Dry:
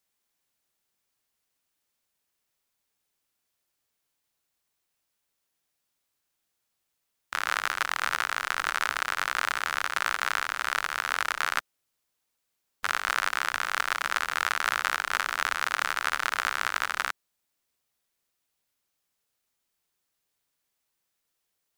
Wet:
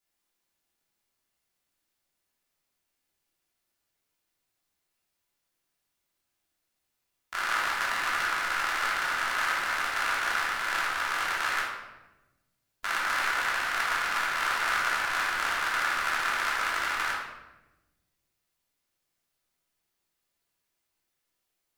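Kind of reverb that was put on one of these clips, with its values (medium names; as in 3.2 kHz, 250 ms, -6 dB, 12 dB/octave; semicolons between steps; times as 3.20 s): simulated room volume 490 m³, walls mixed, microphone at 3.1 m; trim -7.5 dB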